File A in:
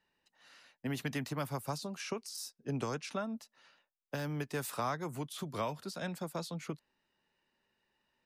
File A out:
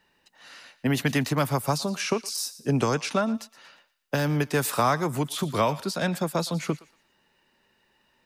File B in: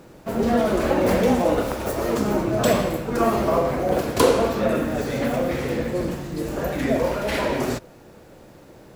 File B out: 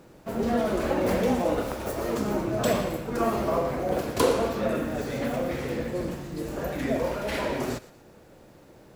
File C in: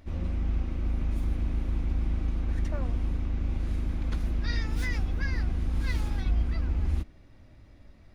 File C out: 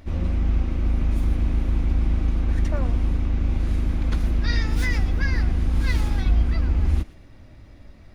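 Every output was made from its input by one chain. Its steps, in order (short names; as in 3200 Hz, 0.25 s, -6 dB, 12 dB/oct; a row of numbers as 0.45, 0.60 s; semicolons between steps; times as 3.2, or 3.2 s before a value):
thinning echo 0.117 s, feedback 36%, high-pass 1100 Hz, level -16 dB; normalise peaks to -9 dBFS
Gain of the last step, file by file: +12.5, -5.5, +7.0 dB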